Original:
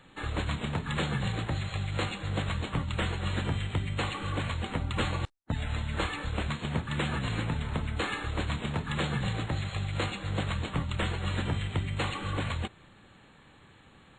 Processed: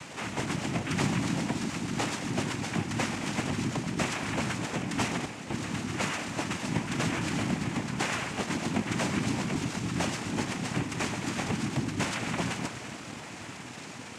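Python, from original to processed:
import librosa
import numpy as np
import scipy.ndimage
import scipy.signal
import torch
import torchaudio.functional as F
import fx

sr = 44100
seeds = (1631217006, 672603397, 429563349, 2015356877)

y = x + 0.5 * 10.0 ** (-38.0 / 20.0) * np.sign(x)
y = fx.rev_schroeder(y, sr, rt60_s=3.9, comb_ms=32, drr_db=7.5)
y = fx.noise_vocoder(y, sr, seeds[0], bands=4)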